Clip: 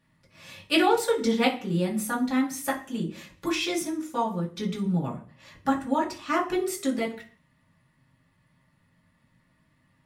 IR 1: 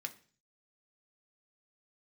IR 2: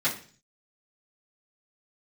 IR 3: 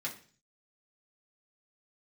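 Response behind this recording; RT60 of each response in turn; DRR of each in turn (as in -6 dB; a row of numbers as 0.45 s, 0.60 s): 3; 0.40 s, 0.40 s, 0.40 s; 5.0 dB, -11.0 dB, -4.5 dB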